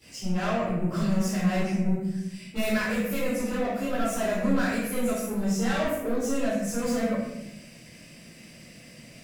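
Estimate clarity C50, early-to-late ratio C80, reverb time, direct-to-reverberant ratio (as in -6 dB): -1.0 dB, 3.0 dB, 0.80 s, -14.5 dB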